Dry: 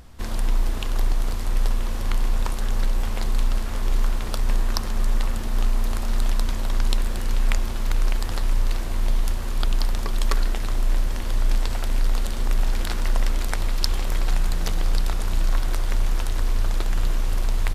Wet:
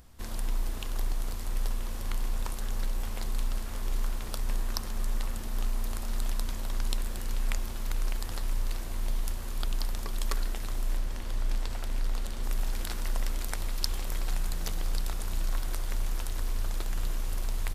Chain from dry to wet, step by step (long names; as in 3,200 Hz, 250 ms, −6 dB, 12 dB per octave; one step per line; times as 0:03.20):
high-shelf EQ 7,400 Hz +9 dB, from 0:10.97 +2 dB, from 0:12.43 +10 dB
level −9 dB